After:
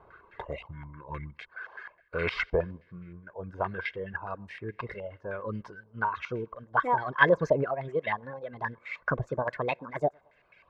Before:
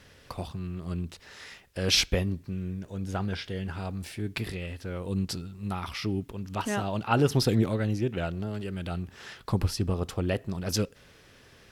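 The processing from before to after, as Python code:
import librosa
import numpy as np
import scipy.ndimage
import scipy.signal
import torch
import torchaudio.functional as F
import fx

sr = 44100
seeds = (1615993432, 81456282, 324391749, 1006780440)

p1 = fx.speed_glide(x, sr, from_pct=76, to_pct=143)
p2 = p1 + 0.49 * np.pad(p1, (int(1.9 * sr / 1000.0), 0))[:len(p1)]
p3 = p2 + fx.echo_thinned(p2, sr, ms=110, feedback_pct=49, hz=310.0, wet_db=-18, dry=0)
p4 = fx.dereverb_blind(p3, sr, rt60_s=1.7)
p5 = fx.low_shelf(p4, sr, hz=170.0, db=-11.0)
y = fx.filter_held_lowpass(p5, sr, hz=9.6, low_hz=830.0, high_hz=2100.0)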